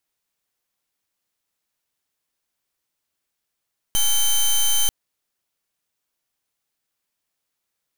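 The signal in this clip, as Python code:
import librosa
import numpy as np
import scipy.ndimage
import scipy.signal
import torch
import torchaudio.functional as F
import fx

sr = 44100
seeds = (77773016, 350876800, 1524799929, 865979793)

y = fx.pulse(sr, length_s=0.94, hz=3090.0, level_db=-17.5, duty_pct=12)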